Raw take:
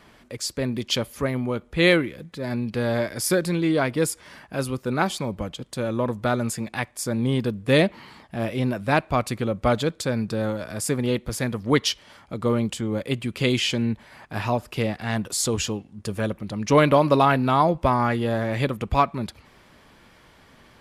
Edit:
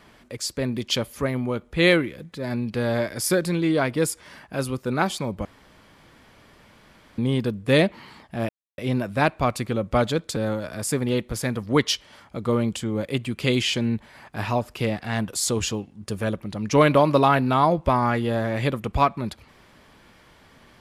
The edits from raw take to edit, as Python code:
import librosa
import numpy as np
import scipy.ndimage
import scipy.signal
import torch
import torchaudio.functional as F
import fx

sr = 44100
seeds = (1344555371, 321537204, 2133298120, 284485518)

y = fx.edit(x, sr, fx.room_tone_fill(start_s=5.45, length_s=1.73),
    fx.insert_silence(at_s=8.49, length_s=0.29),
    fx.cut(start_s=10.07, length_s=0.26), tone=tone)